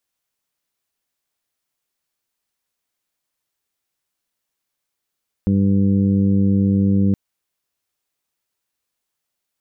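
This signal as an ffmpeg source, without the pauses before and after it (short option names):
-f lavfi -i "aevalsrc='0.119*sin(2*PI*98.4*t)+0.188*sin(2*PI*196.8*t)+0.0562*sin(2*PI*295.2*t)+0.0237*sin(2*PI*393.6*t)+0.0251*sin(2*PI*492*t)':d=1.67:s=44100"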